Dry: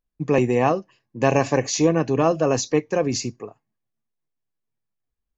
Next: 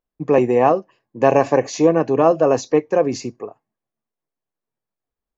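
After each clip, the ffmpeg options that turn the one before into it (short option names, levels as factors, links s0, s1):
-af "equalizer=f=630:w=0.35:g=13,volume=0.447"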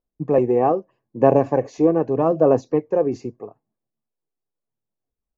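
-af "tiltshelf=f=1400:g=9,aphaser=in_gain=1:out_gain=1:delay=2.6:decay=0.32:speed=0.8:type=sinusoidal,volume=0.335"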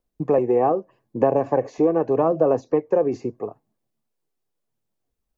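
-filter_complex "[0:a]acrossover=split=380|1900[s0][s1][s2];[s0]acompressor=threshold=0.02:ratio=4[s3];[s1]acompressor=threshold=0.0631:ratio=4[s4];[s2]acompressor=threshold=0.00126:ratio=4[s5];[s3][s4][s5]amix=inputs=3:normalize=0,volume=2"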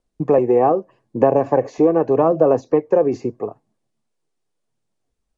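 -af "aresample=22050,aresample=44100,volume=1.58"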